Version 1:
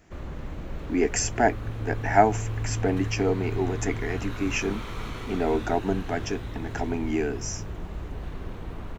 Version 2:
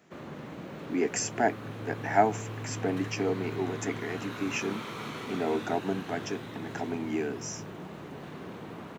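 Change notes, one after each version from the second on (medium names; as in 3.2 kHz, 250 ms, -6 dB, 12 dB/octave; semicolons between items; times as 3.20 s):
speech -4.5 dB; master: add high-pass 140 Hz 24 dB/octave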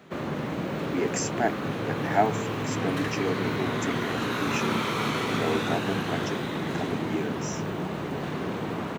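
first sound +11.0 dB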